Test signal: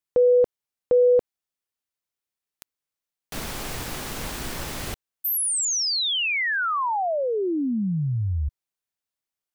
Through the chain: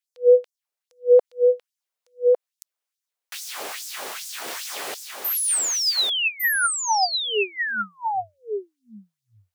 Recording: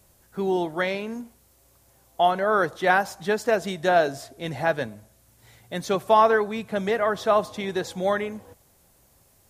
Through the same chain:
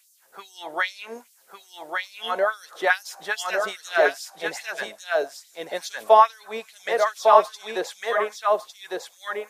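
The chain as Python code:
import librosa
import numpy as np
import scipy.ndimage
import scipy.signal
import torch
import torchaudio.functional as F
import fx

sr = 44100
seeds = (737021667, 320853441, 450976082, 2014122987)

y = fx.filter_lfo_highpass(x, sr, shape='sine', hz=2.4, low_hz=460.0, high_hz=6400.0, q=1.9)
y = y + 10.0 ** (-3.5 / 20.0) * np.pad(y, (int(1154 * sr / 1000.0), 0))[:len(y)]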